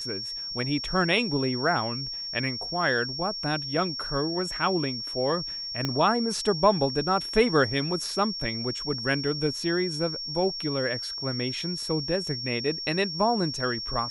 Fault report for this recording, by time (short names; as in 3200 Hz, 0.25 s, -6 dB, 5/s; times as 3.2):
tone 5500 Hz -32 dBFS
5.85 pop -13 dBFS